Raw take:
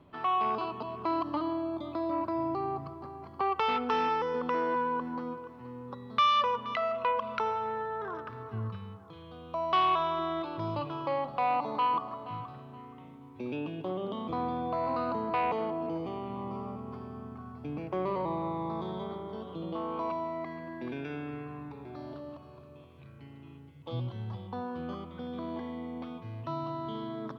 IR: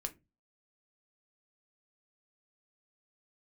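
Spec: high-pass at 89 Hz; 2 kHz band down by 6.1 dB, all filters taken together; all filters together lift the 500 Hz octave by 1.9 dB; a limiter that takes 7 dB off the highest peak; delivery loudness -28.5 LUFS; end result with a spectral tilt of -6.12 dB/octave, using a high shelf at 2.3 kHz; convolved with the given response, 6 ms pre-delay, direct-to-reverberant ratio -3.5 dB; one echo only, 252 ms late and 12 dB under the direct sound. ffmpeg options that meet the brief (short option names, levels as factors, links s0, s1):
-filter_complex "[0:a]highpass=89,equalizer=f=500:t=o:g=3,equalizer=f=2000:t=o:g=-6.5,highshelf=f=2300:g=-3.5,alimiter=level_in=1.12:limit=0.0631:level=0:latency=1,volume=0.891,aecho=1:1:252:0.251,asplit=2[s0][s1];[1:a]atrim=start_sample=2205,adelay=6[s2];[s1][s2]afir=irnorm=-1:irlink=0,volume=1.78[s3];[s0][s3]amix=inputs=2:normalize=0,volume=1.06"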